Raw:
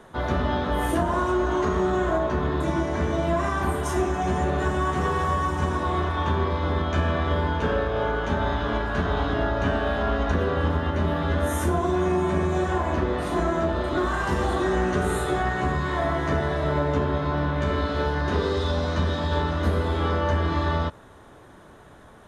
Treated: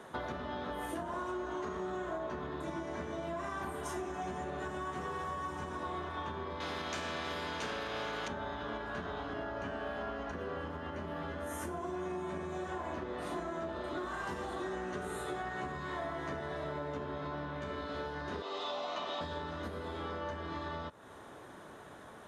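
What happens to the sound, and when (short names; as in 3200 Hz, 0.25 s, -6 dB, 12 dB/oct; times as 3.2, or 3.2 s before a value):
6.6–8.28 spectral compressor 2:1
9.24–12.03 notch 3700 Hz, Q 8.1
18.42–19.21 speaker cabinet 460–7100 Hz, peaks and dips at 480 Hz -7 dB, 700 Hz +8 dB, 1200 Hz +4 dB, 1600 Hz -10 dB, 2800 Hz +7 dB, 5300 Hz -4 dB
whole clip: compressor, threshold -34 dBFS; HPF 210 Hz 6 dB/oct; gain -1 dB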